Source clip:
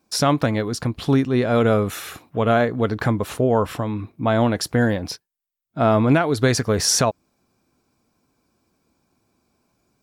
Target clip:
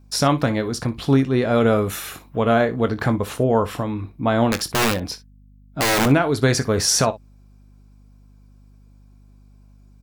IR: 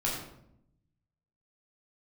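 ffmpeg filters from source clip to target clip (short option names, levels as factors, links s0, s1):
-filter_complex "[0:a]asettb=1/sr,asplit=3[s0][s1][s2];[s0]atrim=end=1.764[s3];[s1]atrim=start=1.76:end=2.4,asetpts=PTS-STARTPTS,afade=t=in:d=0.004:c=qsin,afade=t=out:st=0.636:d=0.004:c=qsin,highshelf=f=9500:g=6[s4];[s2]atrim=start=2.396[s5];[s3][s4]acrossfade=d=0.004:c1=hsin:c2=qsin[s6];[s6][s5]acrossfade=d=0.004:c1=qsin:c2=hsin,asettb=1/sr,asplit=3[s7][s8][s9];[s7]atrim=end=4.494[s10];[s8]atrim=start=4.49:end=6.06,asetpts=PTS-STARTPTS,afade=t=in:d=0.004:c=qsin,afade=t=out:st=1.566:d=0.004:c=qsin,aeval=exprs='(mod(4.47*val(0)+1,2)-1)/4.47':c=same[s11];[s9]atrim=start=6.056[s12];[s10][s11]acrossfade=d=0.004:c1=hsin:c2=qsin[s13];[s13][s12]acrossfade=d=0.004:c1=qsin:c2=hsin,aecho=1:1:22|61:0.251|0.141,aeval=exprs='val(0)+0.00398*(sin(2*PI*50*n/s)+sin(2*PI*2*50*n/s)/2+sin(2*PI*3*50*n/s)/3+sin(2*PI*4*50*n/s)/4+sin(2*PI*5*50*n/s)/5)':c=same"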